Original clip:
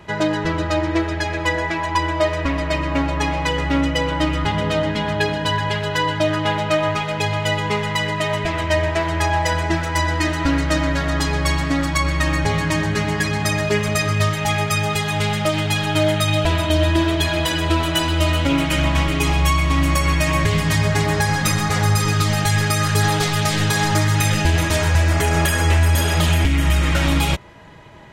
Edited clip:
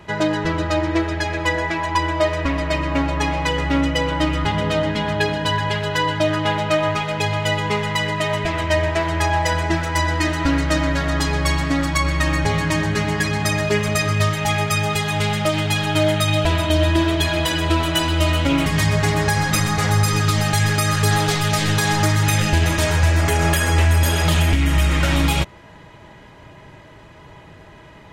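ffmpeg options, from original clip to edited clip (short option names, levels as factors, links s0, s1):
-filter_complex "[0:a]asplit=2[s0][s1];[s0]atrim=end=18.662[s2];[s1]atrim=start=20.578[s3];[s2][s3]acrossfade=d=0.004:c1=hsin:c2=hsin"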